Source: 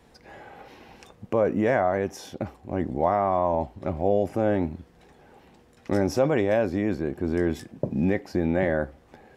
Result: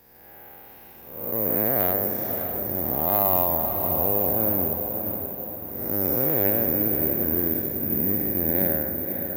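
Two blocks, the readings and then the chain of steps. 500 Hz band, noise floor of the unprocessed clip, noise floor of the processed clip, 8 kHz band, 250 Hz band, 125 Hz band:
−4.0 dB, −56 dBFS, −46 dBFS, can't be measured, −3.0 dB, −2.0 dB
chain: spectrum smeared in time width 330 ms
dynamic equaliser 2,900 Hz, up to −4 dB, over −45 dBFS, Q 0.91
harmonic generator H 3 −23 dB, 6 −26 dB, 8 −25 dB, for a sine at −12 dBFS
on a send: feedback delay with all-pass diffusion 576 ms, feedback 50%, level −6 dB
on the sum: bad sample-rate conversion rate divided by 3×, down none, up zero stuff

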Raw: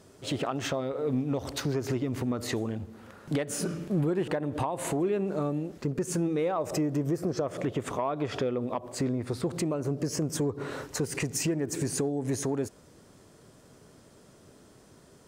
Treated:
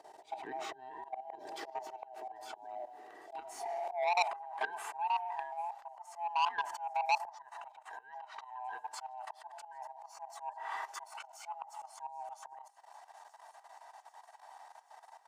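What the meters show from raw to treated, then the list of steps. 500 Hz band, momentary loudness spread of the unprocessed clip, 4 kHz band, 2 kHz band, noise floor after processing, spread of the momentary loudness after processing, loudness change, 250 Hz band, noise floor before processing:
−14.5 dB, 5 LU, −7.5 dB, −1.5 dB, −62 dBFS, 23 LU, −9.0 dB, below −30 dB, −56 dBFS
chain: neighbouring bands swapped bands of 500 Hz
output level in coarse steps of 14 dB
high-shelf EQ 4,000 Hz −8 dB
delay with a high-pass on its return 789 ms, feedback 70%, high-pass 4,400 Hz, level −22.5 dB
high-pass filter sweep 370 Hz → 1,000 Hz, 0:03.59–0:04.55
comb filter 2.6 ms, depth 34%
volume swells 345 ms
hum removal 403.6 Hz, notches 2
saturating transformer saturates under 2,700 Hz
level +1 dB

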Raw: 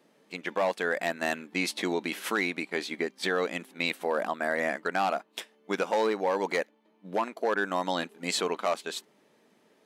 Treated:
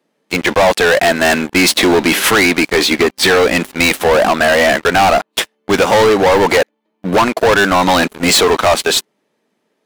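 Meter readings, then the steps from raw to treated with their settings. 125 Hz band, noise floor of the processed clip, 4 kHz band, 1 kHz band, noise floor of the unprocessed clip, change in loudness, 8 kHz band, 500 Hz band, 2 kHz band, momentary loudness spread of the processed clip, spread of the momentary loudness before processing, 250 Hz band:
+21.5 dB, −68 dBFS, +21.0 dB, +17.5 dB, −66 dBFS, +18.0 dB, +22.0 dB, +17.5 dB, +18.0 dB, 5 LU, 7 LU, +18.5 dB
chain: high-pass filter 100 Hz 24 dB per octave
leveller curve on the samples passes 5
level +7.5 dB

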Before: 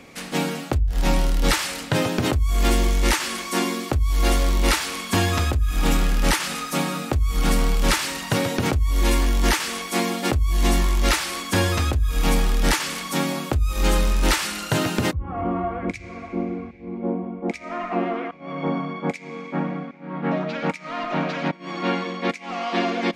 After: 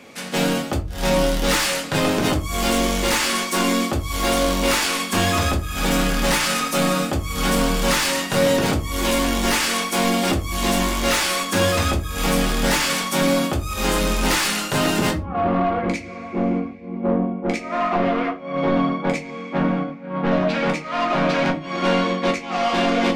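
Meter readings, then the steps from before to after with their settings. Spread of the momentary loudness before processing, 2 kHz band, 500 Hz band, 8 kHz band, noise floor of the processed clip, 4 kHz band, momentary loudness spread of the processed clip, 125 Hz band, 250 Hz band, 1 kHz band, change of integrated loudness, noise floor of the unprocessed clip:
8 LU, +4.0 dB, +5.5 dB, +4.0 dB, −33 dBFS, +4.5 dB, 5 LU, −1.5 dB, +4.0 dB, +4.5 dB, +3.0 dB, −38 dBFS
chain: high-pass filter 200 Hz 6 dB per octave
noise gate −31 dBFS, range −6 dB
in parallel at +1 dB: brickwall limiter −16.5 dBFS, peak gain reduction 8 dB
on the sum: soft clipping −18 dBFS, distortion −11 dB
rectangular room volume 120 cubic metres, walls furnished, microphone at 1.3 metres

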